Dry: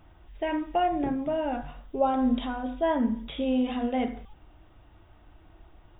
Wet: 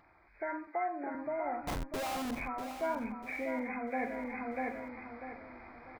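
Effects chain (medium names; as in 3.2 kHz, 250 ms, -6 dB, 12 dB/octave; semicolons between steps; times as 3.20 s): knee-point frequency compression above 1.1 kHz 1.5:1; tilt EQ +4.5 dB/octave; in parallel at 0 dB: compression, threshold -43 dBFS, peak gain reduction 19 dB; on the sum: resampled via 11.025 kHz; vibrato 3.8 Hz 22 cents; 1.67–2.31 s: Schmitt trigger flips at -43 dBFS; on a send: feedback delay 644 ms, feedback 35%, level -9.5 dB; on the sum: gain riding 0.5 s; 0.67–1.15 s: high-pass 230 Hz 24 dB/octave; trim -6 dB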